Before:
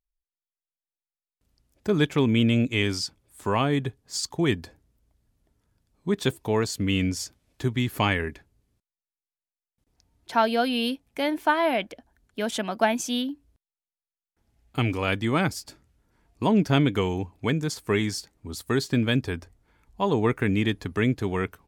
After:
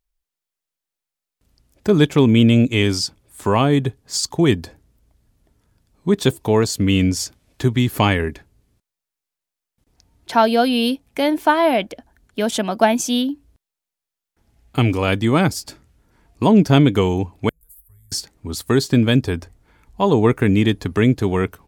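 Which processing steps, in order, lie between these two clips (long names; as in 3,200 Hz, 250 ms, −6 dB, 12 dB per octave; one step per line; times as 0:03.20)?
0:17.49–0:18.12: inverse Chebyshev band-stop filter 140–6,100 Hz, stop band 50 dB
dynamic equaliser 1,900 Hz, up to −5 dB, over −40 dBFS, Q 0.83
level +8.5 dB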